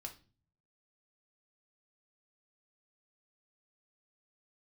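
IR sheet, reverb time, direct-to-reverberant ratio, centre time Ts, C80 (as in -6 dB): 0.35 s, 2.5 dB, 11 ms, 19.5 dB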